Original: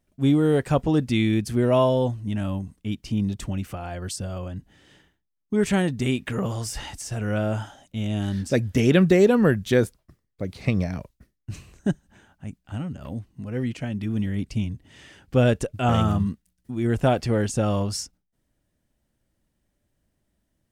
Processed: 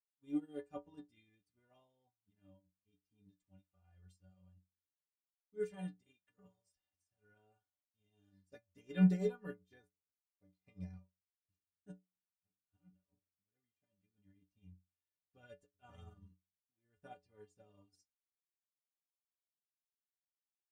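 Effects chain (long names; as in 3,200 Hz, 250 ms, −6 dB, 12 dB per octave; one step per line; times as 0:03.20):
stiff-string resonator 87 Hz, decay 0.61 s, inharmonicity 0.03
expander for the loud parts 2.5 to 1, over −50 dBFS
level −2 dB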